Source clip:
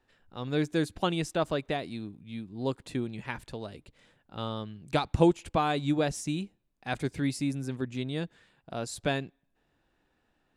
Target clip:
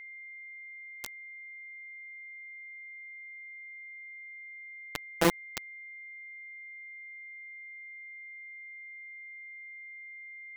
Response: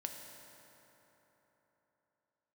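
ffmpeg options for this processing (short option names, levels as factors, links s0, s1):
-filter_complex "[1:a]atrim=start_sample=2205,afade=t=out:st=0.14:d=0.01,atrim=end_sample=6615,asetrate=79380,aresample=44100[s0];[0:a][s0]afir=irnorm=-1:irlink=0,acrusher=bits=3:mix=0:aa=0.000001,aeval=exprs='val(0)+0.00501*sin(2*PI*2100*n/s)':c=same,volume=1.33"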